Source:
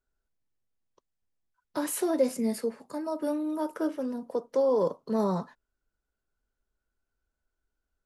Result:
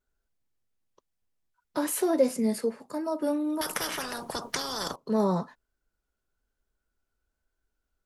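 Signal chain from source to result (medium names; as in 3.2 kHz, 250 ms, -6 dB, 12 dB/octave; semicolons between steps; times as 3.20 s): vibrato 1.1 Hz 28 cents; 3.61–4.96 s: spectrum-flattening compressor 10:1; trim +2 dB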